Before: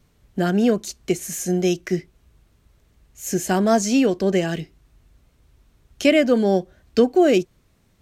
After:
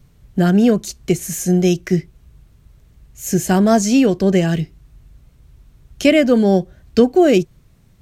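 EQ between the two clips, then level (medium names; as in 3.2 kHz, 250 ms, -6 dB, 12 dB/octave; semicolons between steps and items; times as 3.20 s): bass shelf 91 Hz +9.5 dB; peaking EQ 140 Hz +7.5 dB 0.78 oct; treble shelf 11 kHz +4 dB; +2.5 dB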